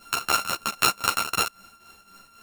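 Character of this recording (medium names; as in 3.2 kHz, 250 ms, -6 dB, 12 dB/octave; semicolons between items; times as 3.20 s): a buzz of ramps at a fixed pitch in blocks of 32 samples; tremolo triangle 3.8 Hz, depth 75%; a shimmering, thickened sound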